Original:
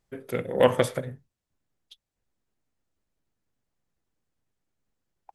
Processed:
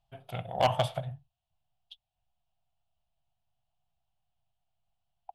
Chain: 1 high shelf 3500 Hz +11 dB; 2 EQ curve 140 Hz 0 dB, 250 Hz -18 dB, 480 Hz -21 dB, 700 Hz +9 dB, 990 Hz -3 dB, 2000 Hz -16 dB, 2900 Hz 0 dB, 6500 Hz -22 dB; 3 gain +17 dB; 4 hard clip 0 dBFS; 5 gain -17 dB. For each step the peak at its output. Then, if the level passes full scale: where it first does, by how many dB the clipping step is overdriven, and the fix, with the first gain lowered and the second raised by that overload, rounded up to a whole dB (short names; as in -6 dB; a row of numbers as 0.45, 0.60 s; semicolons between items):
-5.0, -8.5, +8.5, 0.0, -17.0 dBFS; step 3, 8.5 dB; step 3 +8 dB, step 5 -8 dB